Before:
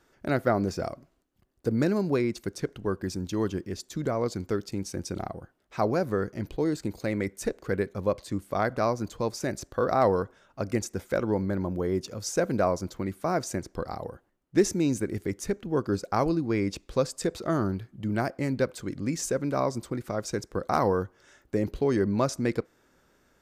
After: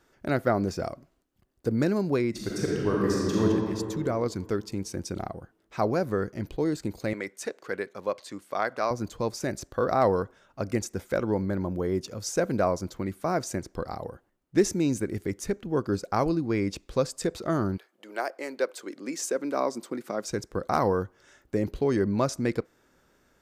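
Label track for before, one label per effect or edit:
2.300000	3.430000	thrown reverb, RT60 2.5 s, DRR −5 dB
7.130000	8.910000	meter weighting curve A
17.760000	20.250000	high-pass filter 510 Hz → 180 Hz 24 dB per octave

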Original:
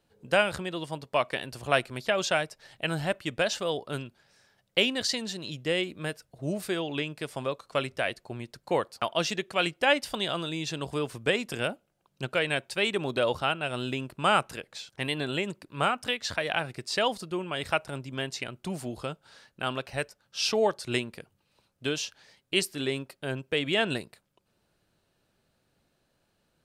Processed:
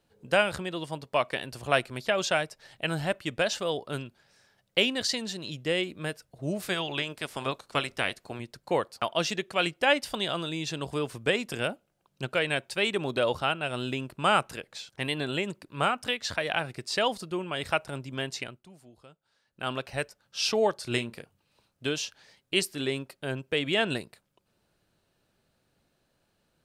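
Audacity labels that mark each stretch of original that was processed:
6.600000	8.380000	ceiling on every frequency bin ceiling under each frame's peak by 13 dB
18.400000	19.710000	duck −18.5 dB, fades 0.26 s
20.780000	21.870000	double-tracking delay 34 ms −11.5 dB

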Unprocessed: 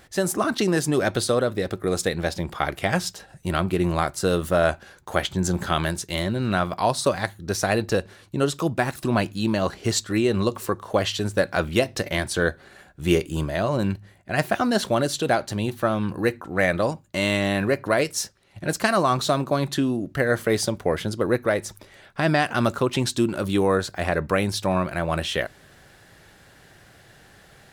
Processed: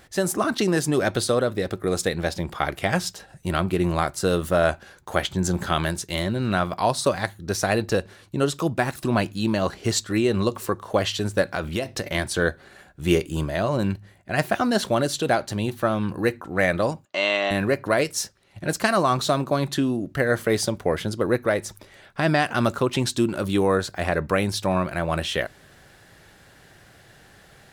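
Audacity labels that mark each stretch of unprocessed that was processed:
11.420000	12.150000	downward compressor 4 to 1, threshold −22 dBFS
17.050000	17.510000	loudspeaker in its box 450–5,900 Hz, peaks and dips at 680 Hz +7 dB, 1,200 Hz +5 dB, 2,800 Hz +4 dB

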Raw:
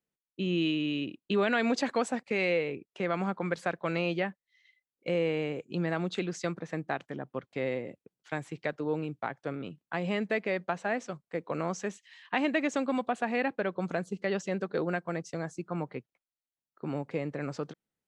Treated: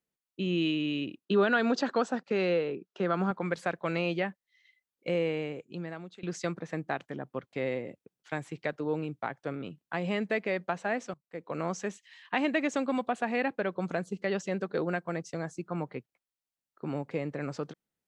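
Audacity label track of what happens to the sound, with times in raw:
1.250000	3.310000	loudspeaker in its box 150–6,400 Hz, peaks and dips at 180 Hz +5 dB, 380 Hz +4 dB, 1,400 Hz +6 dB, 2,200 Hz −10 dB
5.150000	6.230000	fade out, to −21 dB
11.140000	11.660000	fade in, from −20 dB

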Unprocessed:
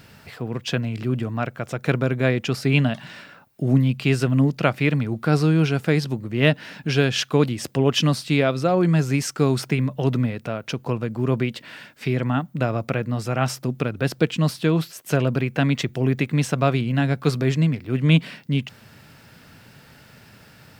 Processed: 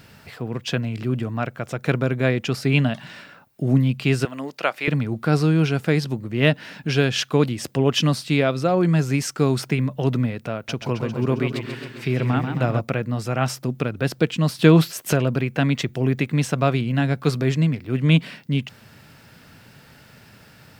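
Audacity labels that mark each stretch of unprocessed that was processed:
4.250000	4.880000	high-pass filter 540 Hz
10.550000	12.800000	feedback echo with a swinging delay time 134 ms, feedback 65%, depth 120 cents, level −7 dB
14.590000	15.130000	clip gain +7 dB

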